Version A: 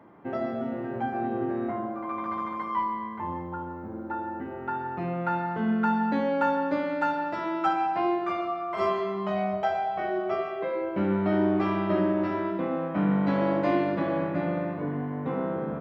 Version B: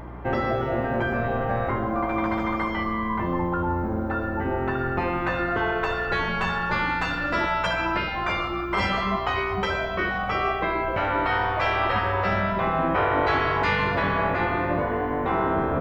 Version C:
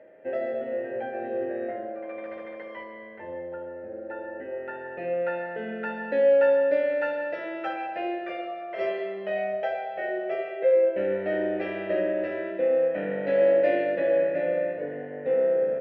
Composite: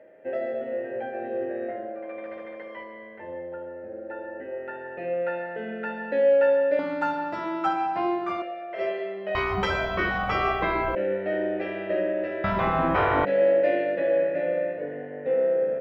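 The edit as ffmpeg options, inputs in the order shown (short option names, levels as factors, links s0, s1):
-filter_complex "[1:a]asplit=2[s0][s1];[2:a]asplit=4[s2][s3][s4][s5];[s2]atrim=end=6.792[s6];[0:a]atrim=start=6.788:end=8.422[s7];[s3]atrim=start=8.418:end=9.352[s8];[s0]atrim=start=9.348:end=10.952[s9];[s4]atrim=start=10.948:end=12.442[s10];[s1]atrim=start=12.438:end=13.252[s11];[s5]atrim=start=13.248[s12];[s6][s7]acrossfade=d=0.004:c1=hsin:c2=hsin[s13];[s13][s8]acrossfade=d=0.004:c1=hsin:c2=hsin[s14];[s14][s9]acrossfade=d=0.004:c1=hsin:c2=hsin[s15];[s15][s10]acrossfade=d=0.004:c1=hsin:c2=hsin[s16];[s16][s11]acrossfade=d=0.004:c1=hsin:c2=hsin[s17];[s17][s12]acrossfade=d=0.004:c1=hsin:c2=hsin"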